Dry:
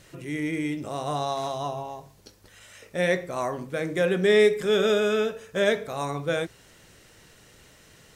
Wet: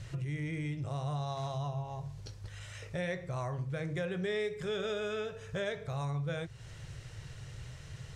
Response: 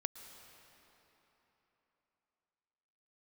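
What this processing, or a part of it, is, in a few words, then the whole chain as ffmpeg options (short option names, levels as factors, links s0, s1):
jukebox: -af "lowpass=7600,lowshelf=f=170:t=q:w=3:g=10.5,acompressor=threshold=0.0141:ratio=3"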